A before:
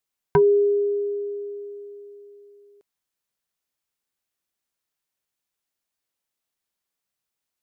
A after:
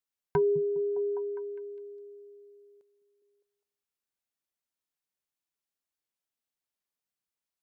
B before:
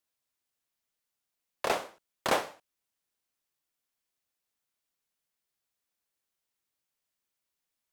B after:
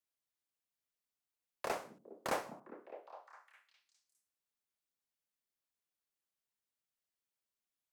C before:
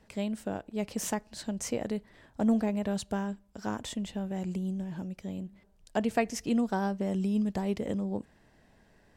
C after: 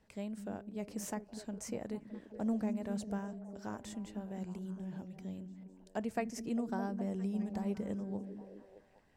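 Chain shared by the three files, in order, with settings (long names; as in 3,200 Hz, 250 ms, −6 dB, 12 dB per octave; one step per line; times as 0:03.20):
dynamic equaliser 3,400 Hz, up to −7 dB, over −57 dBFS, Q 2
echo through a band-pass that steps 204 ms, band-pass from 190 Hz, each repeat 0.7 octaves, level −5 dB
level −8.5 dB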